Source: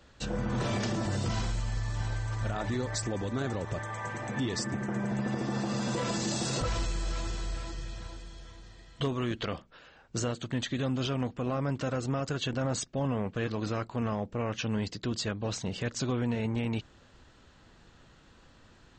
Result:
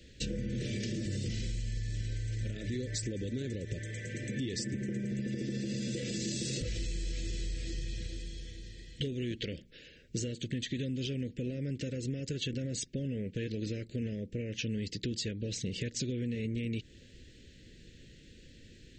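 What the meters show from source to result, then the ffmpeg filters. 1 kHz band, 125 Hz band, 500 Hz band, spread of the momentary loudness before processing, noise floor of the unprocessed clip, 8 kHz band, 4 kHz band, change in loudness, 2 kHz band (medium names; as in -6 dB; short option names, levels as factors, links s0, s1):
under -30 dB, -3.0 dB, -6.0 dB, 6 LU, -58 dBFS, -2.5 dB, -2.0 dB, -4.0 dB, -6.5 dB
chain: -af "acompressor=threshold=0.0158:ratio=6,asuperstop=centerf=970:order=8:qfactor=0.71,volume=1.58"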